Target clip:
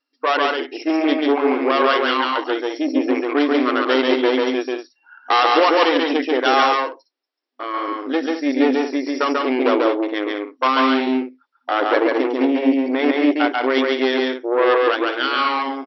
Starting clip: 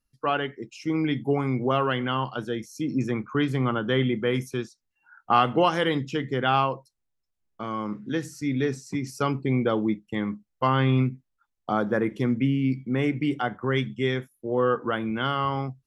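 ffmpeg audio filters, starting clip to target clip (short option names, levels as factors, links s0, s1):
-af "aeval=exprs='0.447*(cos(1*acos(clip(val(0)/0.447,-1,1)))-cos(1*PI/2))+0.126*(cos(5*acos(clip(val(0)/0.447,-1,1)))-cos(5*PI/2))+0.126*(cos(8*acos(clip(val(0)/0.447,-1,1)))-cos(8*PI/2))':c=same,afftfilt=real='re*between(b*sr/4096,250,5700)':imag='im*between(b*sr/4096,250,5700)':win_size=4096:overlap=0.75,aecho=1:1:139.9|198.3:0.794|0.316"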